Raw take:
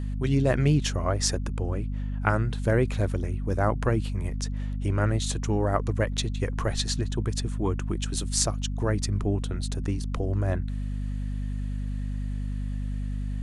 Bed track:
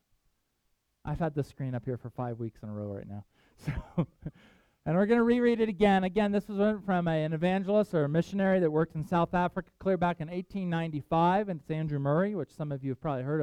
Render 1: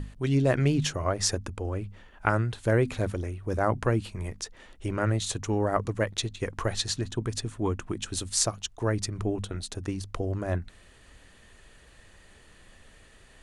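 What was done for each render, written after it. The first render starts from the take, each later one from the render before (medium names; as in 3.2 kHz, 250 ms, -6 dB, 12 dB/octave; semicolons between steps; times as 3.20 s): hum notches 50/100/150/200/250 Hz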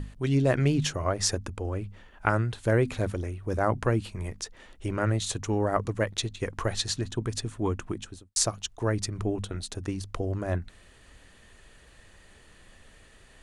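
7.85–8.36 s: studio fade out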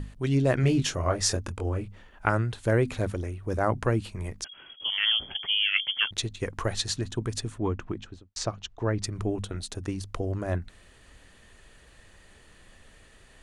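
0.61–1.88 s: doubling 23 ms -5.5 dB; 4.44–6.11 s: frequency inversion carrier 3.3 kHz; 7.58–9.04 s: distance through air 140 m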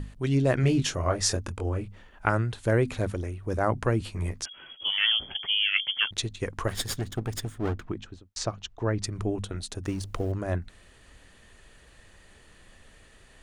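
3.99–5.07 s: doubling 12 ms -2.5 dB; 6.68–7.87 s: comb filter that takes the minimum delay 0.6 ms; 9.85–10.32 s: companding laws mixed up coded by mu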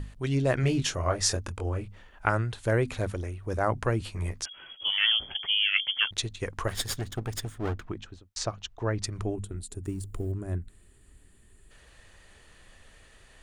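9.35–11.71 s: time-frequency box 450–6900 Hz -12 dB; peaking EQ 230 Hz -4 dB 1.8 oct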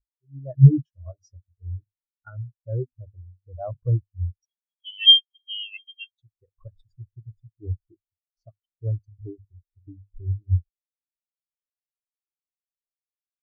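level rider gain up to 11 dB; spectral contrast expander 4:1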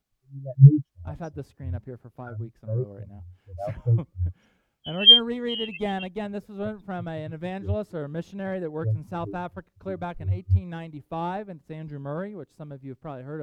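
add bed track -5 dB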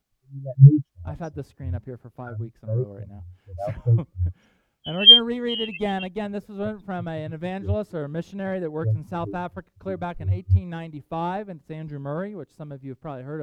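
trim +2.5 dB; peak limiter -1 dBFS, peak gain reduction 2 dB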